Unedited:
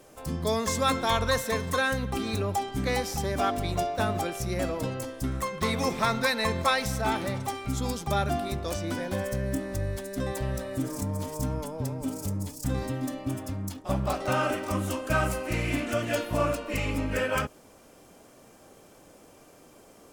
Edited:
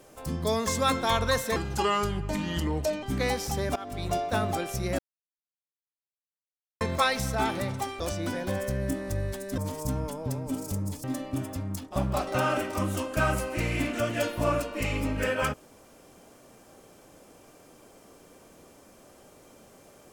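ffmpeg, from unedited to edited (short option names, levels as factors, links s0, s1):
-filter_complex "[0:a]asplit=9[s0][s1][s2][s3][s4][s5][s6][s7][s8];[s0]atrim=end=1.564[s9];[s1]atrim=start=1.56:end=2.69,asetpts=PTS-STARTPTS,asetrate=33957,aresample=44100,atrim=end_sample=64718,asetpts=PTS-STARTPTS[s10];[s2]atrim=start=2.686:end=3.42,asetpts=PTS-STARTPTS,afade=t=out:st=0.73:d=0.004:c=hsin:silence=0.1[s11];[s3]atrim=start=3.42:end=4.65,asetpts=PTS-STARTPTS,afade=t=in:d=0.4:silence=0.1,afade=t=out:st=1.226:d=0.004:c=hsin[s12];[s4]atrim=start=4.65:end=6.47,asetpts=PTS-STARTPTS,volume=0[s13];[s5]atrim=start=6.47:end=7.662,asetpts=PTS-STARTPTS,afade=t=in:d=0.004:c=hsin[s14];[s6]atrim=start=8.638:end=10.222[s15];[s7]atrim=start=11.118:end=12.582[s16];[s8]atrim=start=12.968[s17];[s9][s10]acrossfade=d=0.004:c1=hsin:c2=hsin[s18];[s11][s12][s13][s14]concat=n=4:v=0:a=1[s19];[s18][s19]acrossfade=d=0.004:c1=hsin:c2=hsin[s20];[s20][s15]acrossfade=d=0.004:c1=hsin:c2=hsin[s21];[s21][s16]acrossfade=d=0.004:c1=hsin:c2=hsin[s22];[s22][s17]acrossfade=d=0.004:c1=hsin:c2=hsin"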